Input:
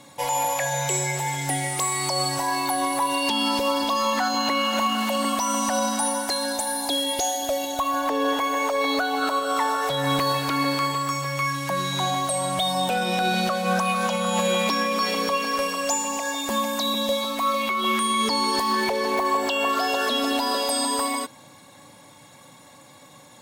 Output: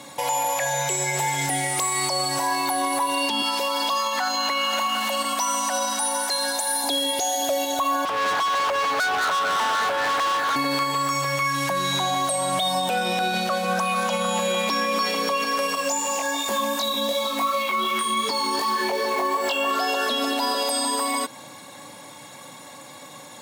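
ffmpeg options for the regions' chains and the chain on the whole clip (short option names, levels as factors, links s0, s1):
-filter_complex "[0:a]asettb=1/sr,asplit=3[s0][s1][s2];[s0]atrim=end=3.424[s3];[s1]atrim=start=3.42:end=6.84,asetpts=PTS-STARTPTS,afade=t=in:d=0.004:c=qsin,afade=t=out:st=3.416:d=0.004:c=qsin,highpass=f=680:p=1,aecho=1:1:87|174|261|348|435:0.15|0.0823|0.0453|0.0249|0.0137,atrim=end_sample=150822[s4];[s2]atrim=start=6.836[s5];[s3][s4]acrossfade=d=0.004:c1=hsin:c2=qsin[s6];[s6][s5]acrossfade=d=0.004:c1=qsin:c2=hsin,asettb=1/sr,asplit=3[s7][s8][s9];[s7]atrim=end=8.054[s10];[s8]atrim=start=8.05:end=10.56,asetpts=PTS-STARTPTS,afade=t=in:d=0.004:c=qsin,afade=t=out:st=2.506:d=0.004:c=qsin,highpass=580,highshelf=f=2200:t=q:w=3:g=-10.5,volume=26.6,asoftclip=hard,volume=0.0376[s11];[s9]atrim=start=10.556[s12];[s10][s11]acrossfade=d=0.004:c1=hsin:c2=qsin[s13];[s13][s12]acrossfade=d=0.004:c1=qsin:c2=hsin,asettb=1/sr,asplit=3[s14][s15][s16];[s14]atrim=end=15.754[s17];[s15]atrim=start=15.75:end=19.71,asetpts=PTS-STARTPTS,afade=t=in:d=0.004:c=qsin,afade=t=out:st=3.956:d=0.004:c=qsin,acrusher=bits=5:mode=log:mix=0:aa=0.000001,flanger=delay=19.5:depth=2.3:speed=2.7[s18];[s16]atrim=start=19.706[s19];[s17][s18]acrossfade=d=0.004:c1=hsin:c2=qsin[s20];[s20][s19]acrossfade=d=0.004:c1=qsin:c2=hsin,highpass=f=230:p=1,alimiter=limit=0.075:level=0:latency=1:release=177,volume=2.37"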